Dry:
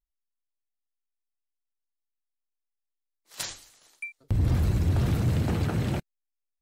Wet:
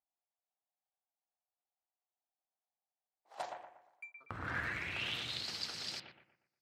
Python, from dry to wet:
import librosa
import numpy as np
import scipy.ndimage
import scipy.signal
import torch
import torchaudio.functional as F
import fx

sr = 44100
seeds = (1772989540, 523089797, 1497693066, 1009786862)

y = fx.power_curve(x, sr, exponent=1.4, at=(3.42, 4.17))
y = fx.filter_sweep_bandpass(y, sr, from_hz=750.0, to_hz=4800.0, start_s=3.84, end_s=5.53, q=5.7)
y = fx.echo_bbd(y, sr, ms=119, stages=2048, feedback_pct=37, wet_db=-5.0)
y = F.gain(torch.from_numpy(y), 12.5).numpy()